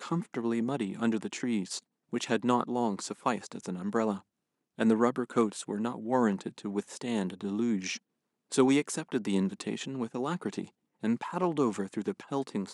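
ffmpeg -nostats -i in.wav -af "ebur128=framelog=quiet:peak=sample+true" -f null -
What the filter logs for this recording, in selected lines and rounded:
Integrated loudness:
  I:         -31.5 LUFS
  Threshold: -41.6 LUFS
Loudness range:
  LRA:         2.0 LU
  Threshold: -51.6 LUFS
  LRA low:   -32.8 LUFS
  LRA high:  -30.8 LUFS
Sample peak:
  Peak:      -10.7 dBFS
True peak:
  Peak:      -10.7 dBFS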